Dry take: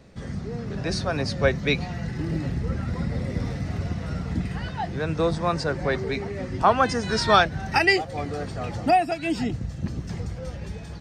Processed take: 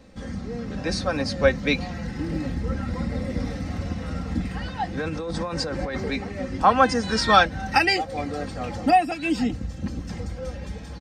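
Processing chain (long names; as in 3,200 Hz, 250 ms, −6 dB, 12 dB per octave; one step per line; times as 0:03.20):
0:04.97–0:06.11: compressor whose output falls as the input rises −28 dBFS, ratio −1
comb filter 3.8 ms, depth 59%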